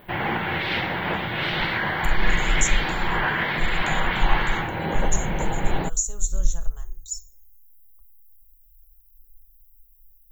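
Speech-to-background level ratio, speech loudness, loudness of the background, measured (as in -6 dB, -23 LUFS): -5.5 dB, -30.5 LUFS, -25.0 LUFS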